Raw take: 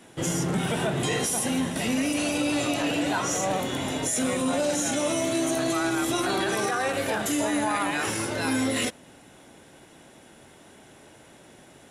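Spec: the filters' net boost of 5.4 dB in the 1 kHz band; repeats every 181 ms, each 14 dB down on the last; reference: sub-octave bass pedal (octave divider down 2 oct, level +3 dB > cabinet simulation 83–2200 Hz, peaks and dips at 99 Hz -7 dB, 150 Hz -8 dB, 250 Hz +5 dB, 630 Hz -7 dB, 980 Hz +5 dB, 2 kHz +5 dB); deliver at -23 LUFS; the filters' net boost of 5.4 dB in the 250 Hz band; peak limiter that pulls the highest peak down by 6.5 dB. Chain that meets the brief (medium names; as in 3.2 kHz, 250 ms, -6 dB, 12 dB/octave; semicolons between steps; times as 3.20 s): peaking EQ 250 Hz +3.5 dB; peaking EQ 1 kHz +5 dB; peak limiter -18 dBFS; feedback delay 181 ms, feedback 20%, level -14 dB; octave divider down 2 oct, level +3 dB; cabinet simulation 83–2200 Hz, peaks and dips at 99 Hz -7 dB, 150 Hz -8 dB, 250 Hz +5 dB, 630 Hz -7 dB, 980 Hz +5 dB, 2 kHz +5 dB; trim +2.5 dB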